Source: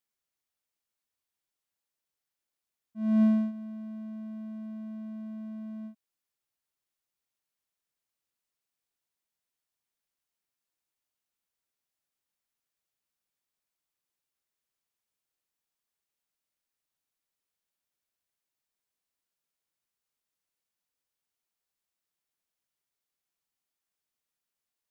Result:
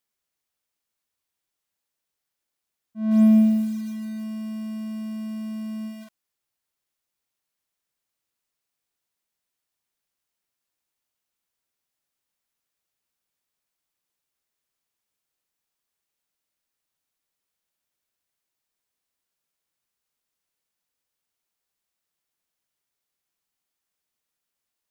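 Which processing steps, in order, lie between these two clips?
bit-crushed delay 151 ms, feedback 35%, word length 8-bit, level -4 dB; trim +4.5 dB

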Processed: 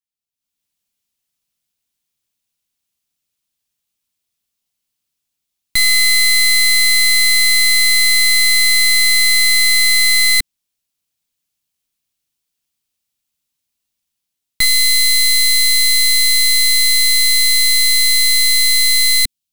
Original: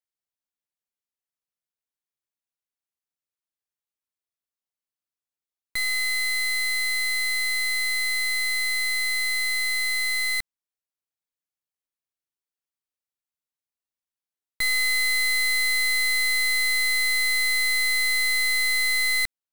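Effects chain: high-order bell 820 Hz -8 dB 2.9 oct, from 14.64 s -16 dB; level rider gain up to 16.5 dB

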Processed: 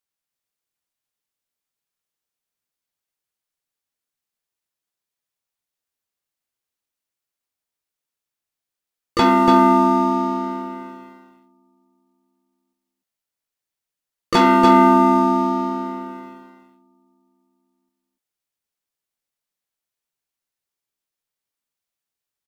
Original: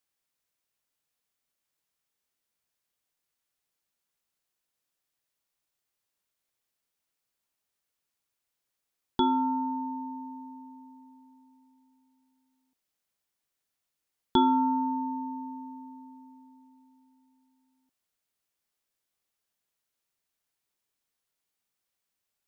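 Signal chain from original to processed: waveshaping leveller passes 3; delay 289 ms -4.5 dB; harmony voices -5 st -6 dB, +5 st -3 dB

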